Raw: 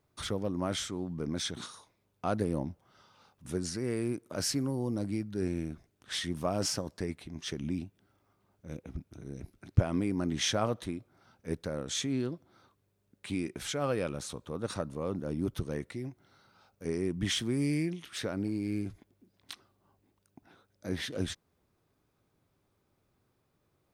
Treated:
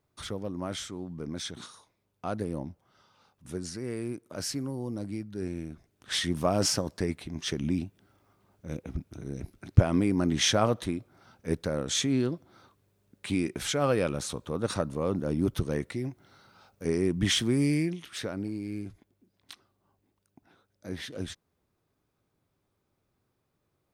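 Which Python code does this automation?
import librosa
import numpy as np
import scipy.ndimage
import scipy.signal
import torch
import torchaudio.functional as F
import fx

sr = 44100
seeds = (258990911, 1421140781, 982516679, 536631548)

y = fx.gain(x, sr, db=fx.line((5.7, -2.0), (6.13, 5.5), (17.51, 5.5), (18.69, -2.5)))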